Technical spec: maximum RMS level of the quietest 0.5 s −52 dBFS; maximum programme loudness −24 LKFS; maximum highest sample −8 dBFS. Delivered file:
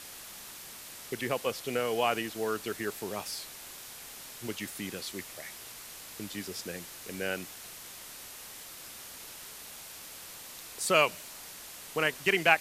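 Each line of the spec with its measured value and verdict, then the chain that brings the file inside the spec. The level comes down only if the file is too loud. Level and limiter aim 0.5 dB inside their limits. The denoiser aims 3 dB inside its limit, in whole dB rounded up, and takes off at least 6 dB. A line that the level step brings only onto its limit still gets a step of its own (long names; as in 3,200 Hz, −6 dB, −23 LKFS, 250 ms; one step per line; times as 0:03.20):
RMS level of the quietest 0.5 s −46 dBFS: out of spec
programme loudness −34.5 LKFS: in spec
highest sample −9.0 dBFS: in spec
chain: broadband denoise 9 dB, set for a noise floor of −46 dBFS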